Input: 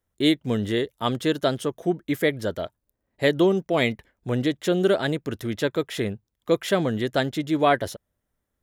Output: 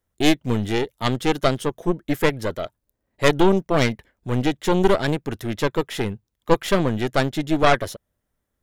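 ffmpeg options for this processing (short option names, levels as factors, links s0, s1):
-af "aeval=exprs='0.531*(cos(1*acos(clip(val(0)/0.531,-1,1)))-cos(1*PI/2))+0.0473*(cos(3*acos(clip(val(0)/0.531,-1,1)))-cos(3*PI/2))+0.133*(cos(4*acos(clip(val(0)/0.531,-1,1)))-cos(4*PI/2))':c=same,volume=1.68"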